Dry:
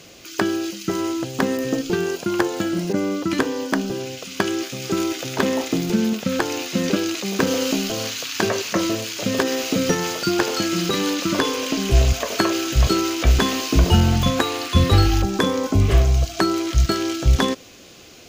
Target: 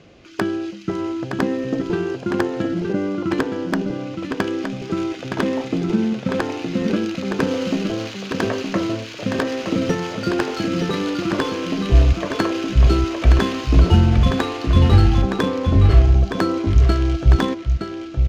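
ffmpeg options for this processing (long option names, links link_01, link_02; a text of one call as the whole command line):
ffmpeg -i in.wav -filter_complex "[0:a]asplit=2[link_01][link_02];[link_02]aecho=0:1:917:0.531[link_03];[link_01][link_03]amix=inputs=2:normalize=0,adynamicsmooth=sensitivity=1:basefreq=2700,lowshelf=frequency=200:gain=5.5,volume=-2dB" out.wav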